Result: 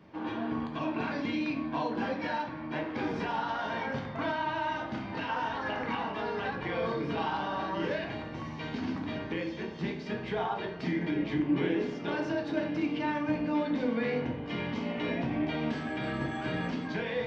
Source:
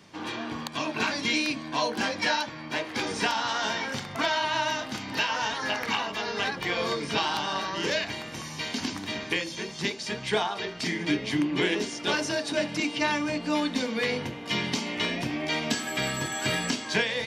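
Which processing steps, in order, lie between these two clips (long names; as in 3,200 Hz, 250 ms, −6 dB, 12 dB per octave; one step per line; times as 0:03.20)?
brickwall limiter −20 dBFS, peak gain reduction 8.5 dB
head-to-tape spacing loss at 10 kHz 40 dB
rectangular room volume 100 cubic metres, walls mixed, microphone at 0.61 metres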